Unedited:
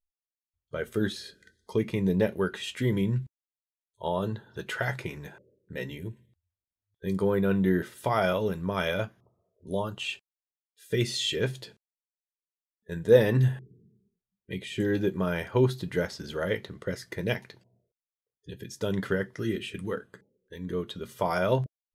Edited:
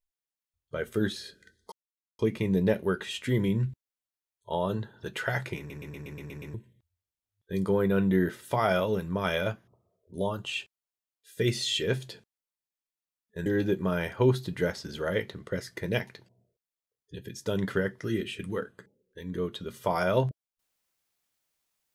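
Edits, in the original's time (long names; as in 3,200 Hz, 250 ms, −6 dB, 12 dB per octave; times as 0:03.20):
0:01.72: splice in silence 0.47 s
0:05.11: stutter in place 0.12 s, 8 plays
0:12.99–0:14.81: remove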